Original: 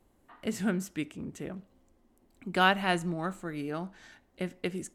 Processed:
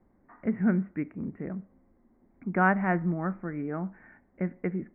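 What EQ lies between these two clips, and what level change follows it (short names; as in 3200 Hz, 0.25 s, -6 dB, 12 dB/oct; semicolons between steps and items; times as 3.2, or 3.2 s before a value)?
steep low-pass 2200 Hz 72 dB/oct; bell 200 Hz +6.5 dB 0.89 oct; 0.0 dB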